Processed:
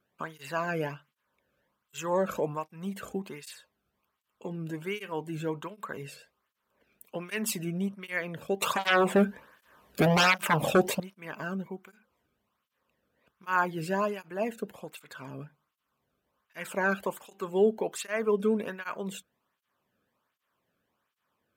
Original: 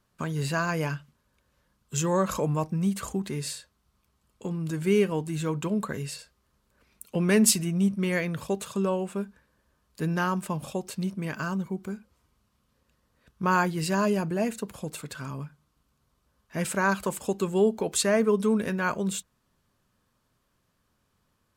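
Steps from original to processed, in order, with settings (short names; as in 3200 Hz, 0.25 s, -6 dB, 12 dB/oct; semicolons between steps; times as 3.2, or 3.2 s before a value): band shelf 6700 Hz -9 dB; 8.62–11 sine folder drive 13 dB, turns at -14 dBFS; tape flanging out of phase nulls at 1.3 Hz, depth 1.1 ms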